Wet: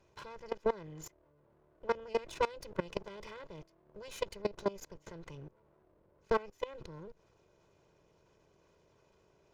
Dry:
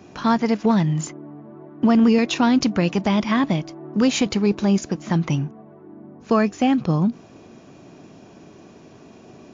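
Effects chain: minimum comb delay 2 ms; tube stage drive 15 dB, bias 0.8; level quantiser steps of 21 dB; gain -5.5 dB

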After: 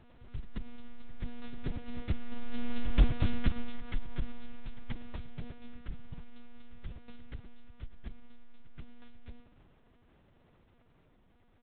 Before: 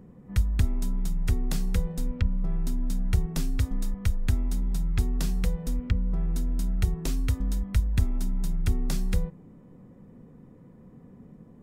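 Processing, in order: delta modulation 32 kbps, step -36 dBFS; Doppler pass-by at 3.07, 18 m/s, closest 8.3 m; on a send: feedback echo 0.296 s, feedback 17%, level -18 dB; on the sum: monotone LPC vocoder at 8 kHz 240 Hz; pre-echo 0.132 s -15 dB; gain +1.5 dB

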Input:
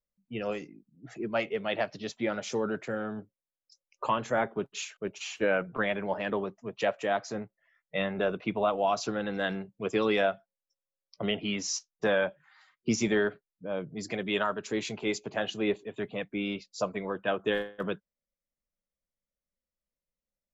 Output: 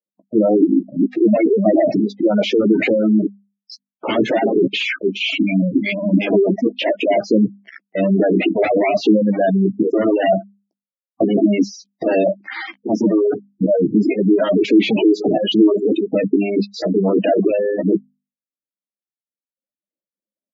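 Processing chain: spectral gain 5.17–6.28, 320–2000 Hz -26 dB; wavefolder -26.5 dBFS; auto swell 0.758 s; sample leveller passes 3; doubler 15 ms -6 dB; limiter -29.5 dBFS, peak gain reduction 6.5 dB; sample leveller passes 5; bell 310 Hz +14 dB 1.2 oct; notches 50/100/150/200/250 Hz; reverb removal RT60 1.2 s; spectral gate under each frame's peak -15 dB strong; speaker cabinet 180–4100 Hz, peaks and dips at 200 Hz +7 dB, 310 Hz +3 dB, 650 Hz +10 dB, 1100 Hz -5 dB, 2200 Hz +7 dB, 3100 Hz +6 dB; gain +9 dB

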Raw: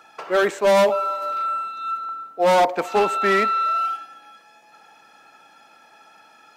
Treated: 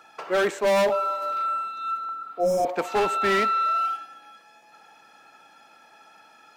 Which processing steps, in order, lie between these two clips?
hard clip -15.5 dBFS, distortion -14 dB; spectral repair 2.22–2.67, 730–5000 Hz both; gain -2 dB

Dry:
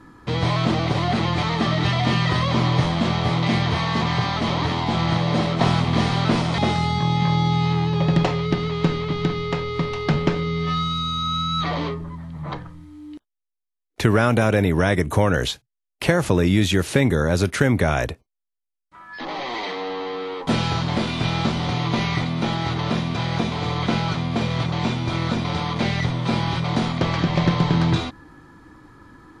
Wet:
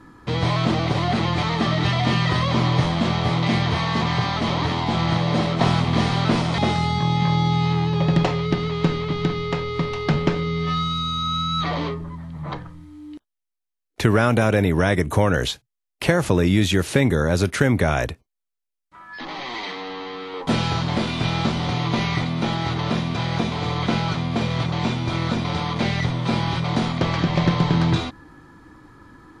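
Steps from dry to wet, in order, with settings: 18.06–20.34 dynamic EQ 550 Hz, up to -7 dB, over -43 dBFS, Q 1.1

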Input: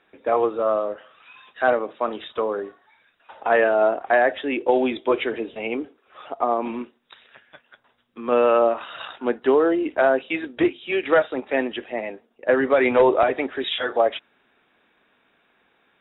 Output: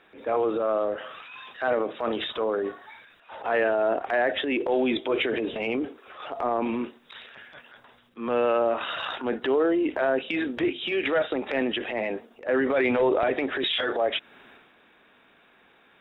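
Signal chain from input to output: dynamic EQ 990 Hz, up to -4 dB, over -35 dBFS, Q 1.4; transient shaper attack -9 dB, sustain +7 dB; compressor 2:1, threshold -32 dBFS, peak gain reduction 10 dB; gain +5 dB

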